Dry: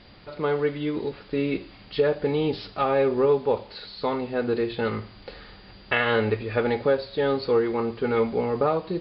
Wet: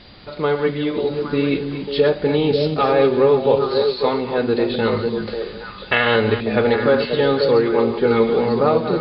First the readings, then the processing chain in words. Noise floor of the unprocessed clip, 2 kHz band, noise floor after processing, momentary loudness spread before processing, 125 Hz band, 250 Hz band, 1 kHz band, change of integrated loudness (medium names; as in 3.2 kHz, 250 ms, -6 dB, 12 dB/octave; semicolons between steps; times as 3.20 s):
-49 dBFS, +6.5 dB, -35 dBFS, 10 LU, +7.0 dB, +7.5 dB, +6.5 dB, +7.0 dB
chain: chunks repeated in reverse 183 ms, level -10 dB; peaking EQ 3.9 kHz +5 dB 0.49 oct; on a send: repeats whose band climbs or falls 271 ms, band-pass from 180 Hz, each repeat 1.4 oct, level -1 dB; on the sum: trim +5.5 dB